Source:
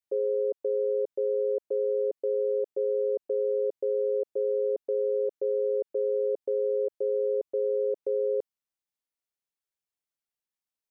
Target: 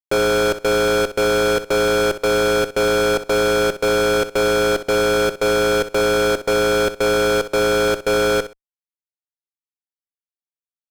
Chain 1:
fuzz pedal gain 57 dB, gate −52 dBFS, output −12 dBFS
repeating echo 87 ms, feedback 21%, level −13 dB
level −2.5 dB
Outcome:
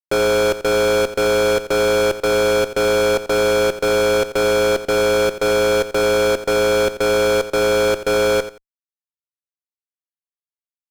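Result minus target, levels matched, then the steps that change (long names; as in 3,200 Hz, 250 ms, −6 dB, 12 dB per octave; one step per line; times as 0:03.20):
echo 24 ms late
change: repeating echo 63 ms, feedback 21%, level −13 dB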